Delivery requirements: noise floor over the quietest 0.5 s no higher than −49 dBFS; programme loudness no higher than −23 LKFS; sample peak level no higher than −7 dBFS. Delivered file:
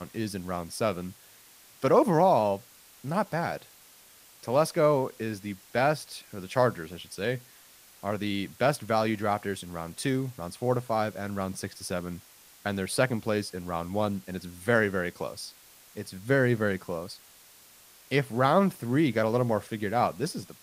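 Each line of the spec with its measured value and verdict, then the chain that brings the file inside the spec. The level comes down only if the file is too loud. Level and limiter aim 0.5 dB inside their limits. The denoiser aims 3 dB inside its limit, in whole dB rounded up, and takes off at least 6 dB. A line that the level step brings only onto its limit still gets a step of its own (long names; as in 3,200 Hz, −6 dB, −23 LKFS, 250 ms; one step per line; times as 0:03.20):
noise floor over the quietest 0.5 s −55 dBFS: in spec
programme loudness −28.5 LKFS: in spec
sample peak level −7.5 dBFS: in spec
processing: no processing needed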